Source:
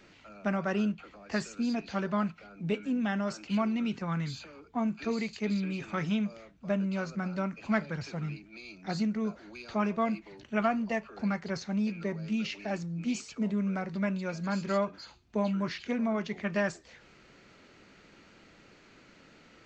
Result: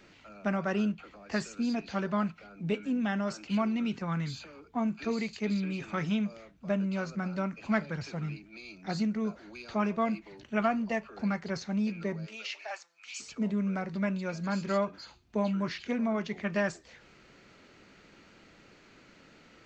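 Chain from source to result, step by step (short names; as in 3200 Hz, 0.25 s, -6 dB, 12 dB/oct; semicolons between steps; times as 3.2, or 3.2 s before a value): 12.25–13.19 HPF 390 Hz -> 1300 Hz 24 dB/oct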